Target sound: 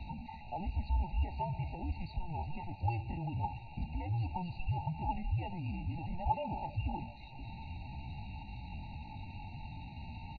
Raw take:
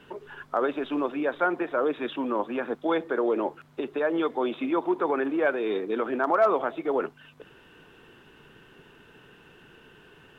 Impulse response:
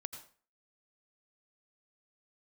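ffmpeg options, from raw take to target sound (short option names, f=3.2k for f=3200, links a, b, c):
-filter_complex "[0:a]aeval=exprs='val(0)+0.5*0.0316*sgn(val(0))':c=same,acrossover=split=510[a][b];[a]acompressor=threshold=-34dB:ratio=20[c];[c][b]amix=inputs=2:normalize=0,asplit=3[d][e][f];[d]bandpass=f=300:t=q:w=8,volume=0dB[g];[e]bandpass=f=870:t=q:w=8,volume=-6dB[h];[f]bandpass=f=2.24k:t=q:w=8,volume=-9dB[i];[g][h][i]amix=inputs=3:normalize=0,highpass=f=200:t=q:w=0.5412,highpass=f=200:t=q:w=1.307,lowpass=f=3.2k:t=q:w=0.5176,lowpass=f=3.2k:t=q:w=0.7071,lowpass=f=3.2k:t=q:w=1.932,afreqshift=-250,asetrate=62367,aresample=44100,atempo=0.707107,asplit=2[j][k];[k]aecho=0:1:694:0.0794[l];[j][l]amix=inputs=2:normalize=0,afftfilt=real='re*eq(mod(floor(b*sr/1024/940),2),0)':imag='im*eq(mod(floor(b*sr/1024/940),2),0)':win_size=1024:overlap=0.75,volume=5dB"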